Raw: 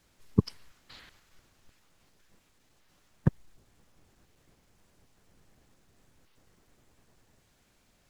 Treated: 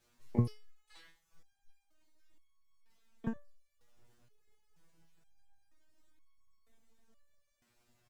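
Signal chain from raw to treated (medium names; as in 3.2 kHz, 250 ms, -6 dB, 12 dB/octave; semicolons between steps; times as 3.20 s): reverb removal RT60 0.85 s; harmony voices +12 st -12 dB; delay 86 ms -21 dB; resonator arpeggio 2.1 Hz 120–1100 Hz; trim +6 dB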